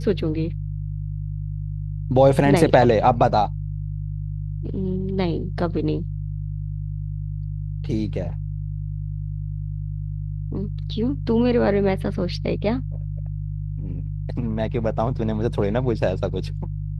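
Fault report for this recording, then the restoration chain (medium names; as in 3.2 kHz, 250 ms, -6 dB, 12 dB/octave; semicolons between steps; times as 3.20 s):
hum 50 Hz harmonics 3 -28 dBFS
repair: de-hum 50 Hz, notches 3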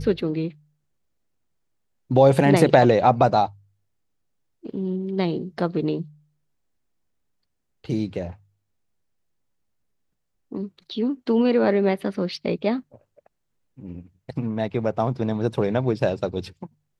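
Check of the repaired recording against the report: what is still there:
nothing left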